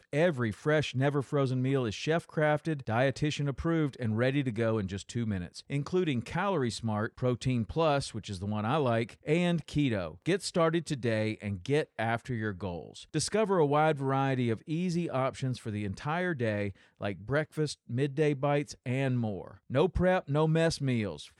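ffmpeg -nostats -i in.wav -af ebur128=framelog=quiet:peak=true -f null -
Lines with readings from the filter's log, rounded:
Integrated loudness:
  I:         -30.7 LUFS
  Threshold: -40.7 LUFS
Loudness range:
  LRA:         2.4 LU
  Threshold: -50.9 LUFS
  LRA low:   -32.2 LUFS
  LRA high:  -29.9 LUFS
True peak:
  Peak:      -14.3 dBFS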